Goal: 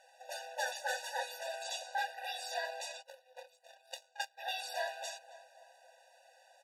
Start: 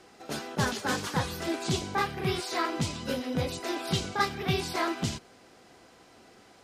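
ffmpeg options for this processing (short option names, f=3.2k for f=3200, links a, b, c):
-filter_complex "[0:a]asplit=2[a][b];[b]adelay=270,lowpass=f=1.9k:p=1,volume=-13dB,asplit=2[c][d];[d]adelay=270,lowpass=f=1.9k:p=1,volume=0.55,asplit=2[e][f];[f]adelay=270,lowpass=f=1.9k:p=1,volume=0.55,asplit=2[g][h];[h]adelay=270,lowpass=f=1.9k:p=1,volume=0.55,asplit=2[i][j];[j]adelay=270,lowpass=f=1.9k:p=1,volume=0.55,asplit=2[k][l];[l]adelay=270,lowpass=f=1.9k:p=1,volume=0.55[m];[a][c][e][g][i][k][m]amix=inputs=7:normalize=0,asplit=3[n][o][p];[n]afade=t=out:st=3.01:d=0.02[q];[o]aeval=exprs='0.211*(cos(1*acos(clip(val(0)/0.211,-1,1)))-cos(1*PI/2))+0.0668*(cos(3*acos(clip(val(0)/0.211,-1,1)))-cos(3*PI/2))':c=same,afade=t=in:st=3.01:d=0.02,afade=t=out:st=4.37:d=0.02[r];[p]afade=t=in:st=4.37:d=0.02[s];[q][r][s]amix=inputs=3:normalize=0,afftfilt=real='re*eq(mod(floor(b*sr/1024/490),2),1)':imag='im*eq(mod(floor(b*sr/1024/490),2),1)':win_size=1024:overlap=0.75,volume=-3.5dB"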